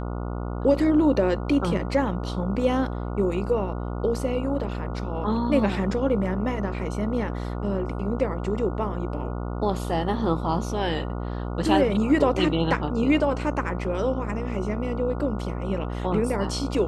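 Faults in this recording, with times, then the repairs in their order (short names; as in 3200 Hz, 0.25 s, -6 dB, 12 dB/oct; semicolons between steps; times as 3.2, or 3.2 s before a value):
buzz 60 Hz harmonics 24 -30 dBFS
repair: de-hum 60 Hz, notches 24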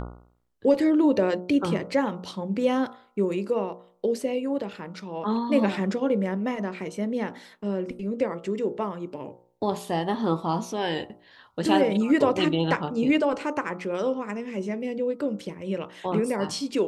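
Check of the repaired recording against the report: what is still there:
none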